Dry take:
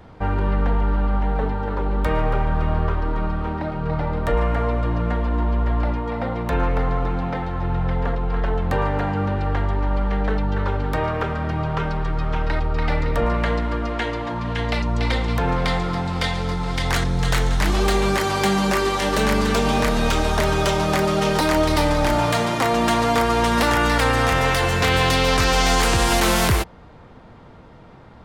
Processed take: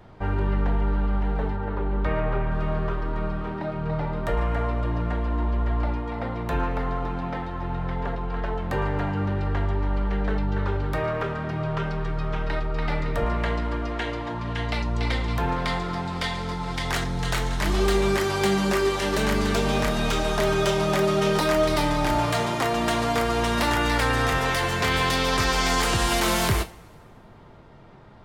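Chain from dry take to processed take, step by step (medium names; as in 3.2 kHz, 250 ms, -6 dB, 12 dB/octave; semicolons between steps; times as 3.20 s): 1.56–2.51 s: low-pass 3.4 kHz 12 dB/octave; two-slope reverb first 0.26 s, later 1.7 s, from -22 dB, DRR 7 dB; trim -4.5 dB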